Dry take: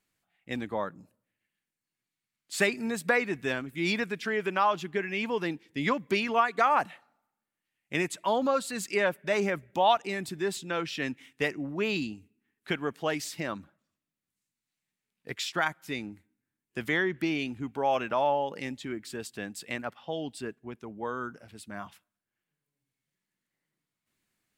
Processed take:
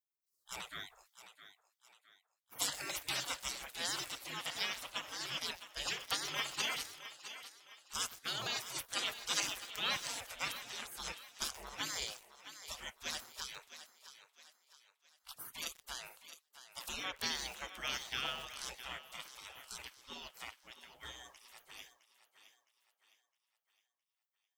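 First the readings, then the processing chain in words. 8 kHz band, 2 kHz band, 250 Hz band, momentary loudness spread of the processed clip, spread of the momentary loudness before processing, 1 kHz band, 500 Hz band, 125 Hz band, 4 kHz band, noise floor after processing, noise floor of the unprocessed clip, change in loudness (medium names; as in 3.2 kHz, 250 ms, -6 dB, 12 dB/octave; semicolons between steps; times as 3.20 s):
+2.0 dB, -10.5 dB, -23.0 dB, 18 LU, 13 LU, -16.5 dB, -22.5 dB, -17.0 dB, +0.5 dB, under -85 dBFS, under -85 dBFS, -10.0 dB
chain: spectral gate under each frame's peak -30 dB weak; thinning echo 662 ms, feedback 41%, high-pass 330 Hz, level -12 dB; bit-crushed delay 126 ms, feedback 80%, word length 8-bit, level -12.5 dB; trim +11.5 dB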